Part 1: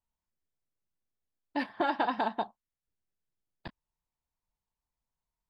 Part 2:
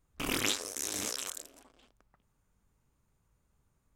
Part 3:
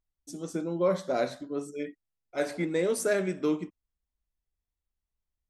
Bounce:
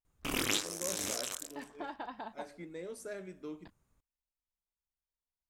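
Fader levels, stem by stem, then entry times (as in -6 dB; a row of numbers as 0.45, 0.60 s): -13.5, -1.0, -16.5 dB; 0.00, 0.05, 0.00 s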